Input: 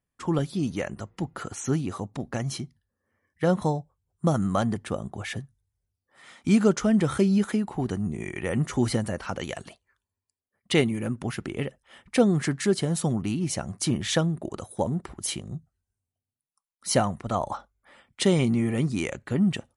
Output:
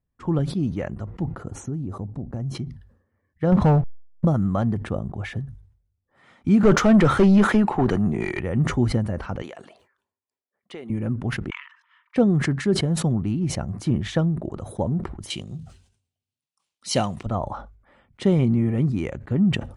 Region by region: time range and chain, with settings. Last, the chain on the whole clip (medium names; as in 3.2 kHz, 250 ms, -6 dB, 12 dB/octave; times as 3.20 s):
1.38–2.55 s: peaking EQ 2.5 kHz -13 dB 2.7 oct + compression 4:1, threshold -29 dBFS
3.52–4.25 s: low-pass 7.1 kHz + waveshaping leveller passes 3 + hysteresis with a dead band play -45.5 dBFS
6.63–8.40 s: overdrive pedal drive 24 dB, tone 6.7 kHz, clips at -9 dBFS + three bands expanded up and down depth 40%
9.42–10.90 s: high-pass 380 Hz + compression, threshold -32 dBFS
11.50–12.16 s: brick-wall FIR high-pass 910 Hz + distance through air 190 m
15.30–17.26 s: block-companded coder 7-bit + high-pass 190 Hz 6 dB/octave + high-order bell 4.9 kHz +14.5 dB 2.3 oct
whole clip: low-pass 1.2 kHz 6 dB/octave; bass shelf 130 Hz +10.5 dB; decay stretcher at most 100 dB/s